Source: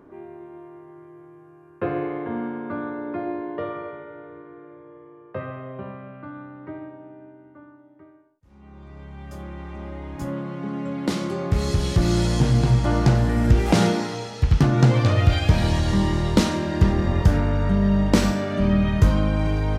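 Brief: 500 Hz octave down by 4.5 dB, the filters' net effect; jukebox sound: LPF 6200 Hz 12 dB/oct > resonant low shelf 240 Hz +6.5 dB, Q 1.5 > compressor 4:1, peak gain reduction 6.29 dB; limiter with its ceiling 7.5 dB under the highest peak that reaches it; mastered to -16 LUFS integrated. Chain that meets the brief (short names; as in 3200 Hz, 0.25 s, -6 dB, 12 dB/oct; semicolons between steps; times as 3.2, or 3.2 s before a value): bell 500 Hz -4.5 dB; limiter -12.5 dBFS; LPF 6200 Hz 12 dB/oct; resonant low shelf 240 Hz +6.5 dB, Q 1.5; compressor 4:1, threshold -15 dBFS; gain +6 dB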